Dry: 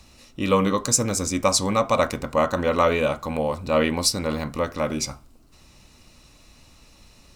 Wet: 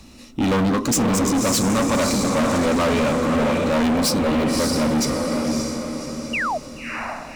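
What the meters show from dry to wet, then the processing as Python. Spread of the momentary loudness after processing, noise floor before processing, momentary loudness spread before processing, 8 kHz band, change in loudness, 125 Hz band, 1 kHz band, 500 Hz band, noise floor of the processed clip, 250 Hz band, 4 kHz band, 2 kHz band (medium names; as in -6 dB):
10 LU, -53 dBFS, 7 LU, +1.0 dB, +2.0 dB, +4.5 dB, +1.5 dB, +1.5 dB, -41 dBFS, +8.5 dB, +2.5 dB, +4.5 dB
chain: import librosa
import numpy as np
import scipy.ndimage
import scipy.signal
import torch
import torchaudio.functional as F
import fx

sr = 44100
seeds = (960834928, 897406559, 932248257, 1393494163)

y = fx.peak_eq(x, sr, hz=250.0, db=10.5, octaves=0.95)
y = fx.spec_paint(y, sr, seeds[0], shape='fall', start_s=6.33, length_s=0.25, low_hz=570.0, high_hz=3000.0, level_db=-27.0)
y = fx.echo_diffused(y, sr, ms=580, feedback_pct=46, wet_db=-5)
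y = np.clip(y, -10.0 ** (-21.0 / 20.0), 10.0 ** (-21.0 / 20.0))
y = y * 10.0 ** (4.0 / 20.0)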